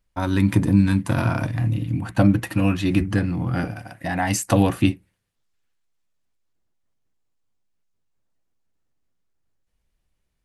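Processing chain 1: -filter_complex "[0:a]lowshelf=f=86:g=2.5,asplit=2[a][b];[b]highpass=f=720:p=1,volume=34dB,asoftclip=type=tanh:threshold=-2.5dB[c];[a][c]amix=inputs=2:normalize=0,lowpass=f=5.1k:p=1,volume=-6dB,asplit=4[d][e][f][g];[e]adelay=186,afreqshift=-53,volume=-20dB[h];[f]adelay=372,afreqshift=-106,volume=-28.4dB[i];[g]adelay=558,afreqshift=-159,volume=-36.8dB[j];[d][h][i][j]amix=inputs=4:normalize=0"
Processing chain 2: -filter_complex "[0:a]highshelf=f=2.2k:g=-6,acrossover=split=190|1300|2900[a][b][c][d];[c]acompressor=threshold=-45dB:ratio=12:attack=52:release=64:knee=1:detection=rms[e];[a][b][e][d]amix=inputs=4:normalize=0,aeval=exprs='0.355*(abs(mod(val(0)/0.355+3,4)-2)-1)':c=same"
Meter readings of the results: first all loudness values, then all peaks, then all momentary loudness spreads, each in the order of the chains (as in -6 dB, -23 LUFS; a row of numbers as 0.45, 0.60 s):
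-11.5, -22.0 LUFS; -2.5, -9.0 dBFS; 3, 8 LU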